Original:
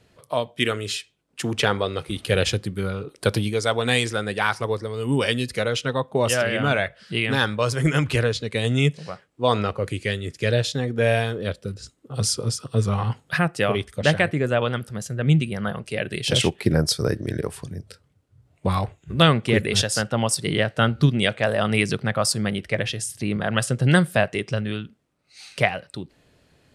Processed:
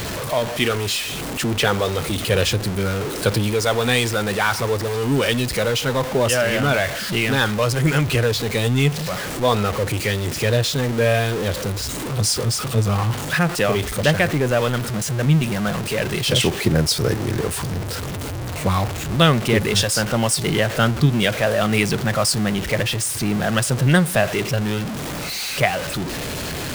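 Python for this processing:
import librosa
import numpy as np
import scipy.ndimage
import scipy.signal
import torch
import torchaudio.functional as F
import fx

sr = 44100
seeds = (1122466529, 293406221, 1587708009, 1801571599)

y = x + 0.5 * 10.0 ** (-21.5 / 20.0) * np.sign(x)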